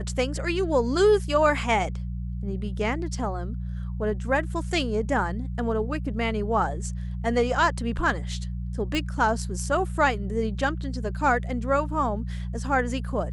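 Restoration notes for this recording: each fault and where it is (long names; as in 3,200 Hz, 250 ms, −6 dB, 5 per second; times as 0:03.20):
mains hum 60 Hz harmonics 3 −31 dBFS
0:08.95: click −15 dBFS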